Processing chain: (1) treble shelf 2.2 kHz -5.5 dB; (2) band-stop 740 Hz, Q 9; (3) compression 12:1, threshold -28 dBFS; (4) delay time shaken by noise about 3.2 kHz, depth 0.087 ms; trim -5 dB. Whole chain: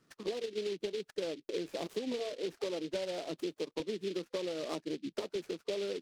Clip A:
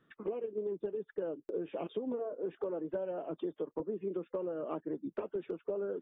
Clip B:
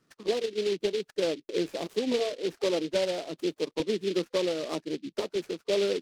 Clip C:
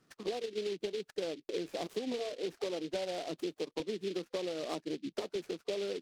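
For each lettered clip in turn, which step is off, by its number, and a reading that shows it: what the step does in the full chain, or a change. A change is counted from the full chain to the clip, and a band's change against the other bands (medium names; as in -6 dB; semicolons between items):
4, 2 kHz band -9.5 dB; 3, mean gain reduction 6.5 dB; 2, 1 kHz band +2.5 dB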